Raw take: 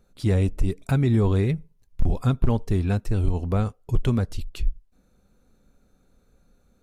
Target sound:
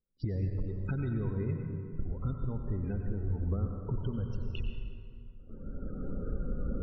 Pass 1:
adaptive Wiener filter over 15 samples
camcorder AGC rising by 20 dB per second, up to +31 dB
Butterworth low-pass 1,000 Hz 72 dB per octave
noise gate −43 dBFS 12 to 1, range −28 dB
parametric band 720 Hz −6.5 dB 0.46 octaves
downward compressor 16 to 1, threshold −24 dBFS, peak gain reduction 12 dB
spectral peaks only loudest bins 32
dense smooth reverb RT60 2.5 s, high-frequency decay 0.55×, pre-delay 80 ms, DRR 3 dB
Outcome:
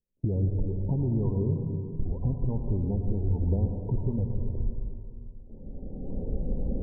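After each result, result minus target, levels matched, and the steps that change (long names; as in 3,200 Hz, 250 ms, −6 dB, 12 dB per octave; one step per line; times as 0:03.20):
downward compressor: peak gain reduction −6 dB; 1,000 Hz band −3.5 dB
change: downward compressor 16 to 1, threshold −30.5 dBFS, peak gain reduction 18 dB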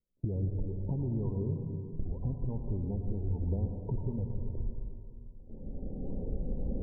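1,000 Hz band −3.0 dB
remove: Butterworth low-pass 1,000 Hz 72 dB per octave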